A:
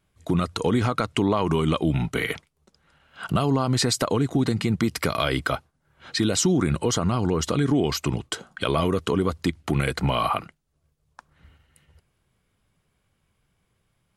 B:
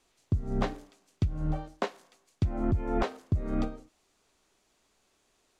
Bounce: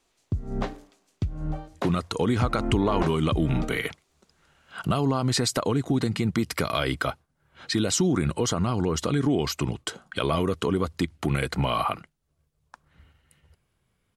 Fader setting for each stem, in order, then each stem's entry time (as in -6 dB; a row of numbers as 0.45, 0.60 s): -2.0, 0.0 dB; 1.55, 0.00 s